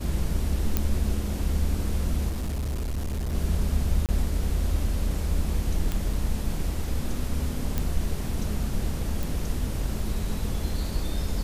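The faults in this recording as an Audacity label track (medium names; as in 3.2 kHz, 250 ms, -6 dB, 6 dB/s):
0.770000	0.770000	pop -8 dBFS
2.300000	3.350000	clipped -25.5 dBFS
4.060000	4.090000	dropout 28 ms
5.920000	5.920000	pop
7.780000	7.780000	pop -12 dBFS
9.230000	9.230000	pop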